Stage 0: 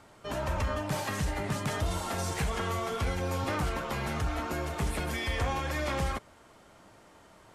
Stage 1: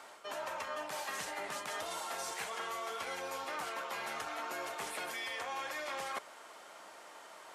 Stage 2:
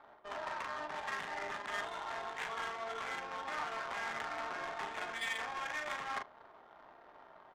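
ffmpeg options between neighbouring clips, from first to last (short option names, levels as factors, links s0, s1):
-af "highpass=600,areverse,acompressor=threshold=0.00631:ratio=6,areverse,volume=2"
-af "highpass=130,equalizer=f=180:t=q:w=4:g=-5,equalizer=f=310:t=q:w=4:g=-6,equalizer=f=520:t=q:w=4:g=-9,equalizer=f=1800:t=q:w=4:g=4,equalizer=f=3600:t=q:w=4:g=8,lowpass=f=4000:w=0.5412,lowpass=f=4000:w=1.3066,aecho=1:1:40|72:0.668|0.178,adynamicsmooth=sensitivity=7:basefreq=550"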